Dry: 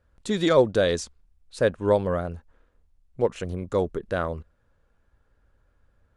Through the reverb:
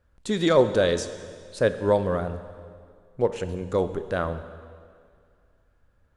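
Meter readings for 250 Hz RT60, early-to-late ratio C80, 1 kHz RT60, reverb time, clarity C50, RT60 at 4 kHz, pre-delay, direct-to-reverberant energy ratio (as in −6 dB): 2.0 s, 12.5 dB, 2.1 s, 2.1 s, 11.5 dB, 2.0 s, 9 ms, 10.5 dB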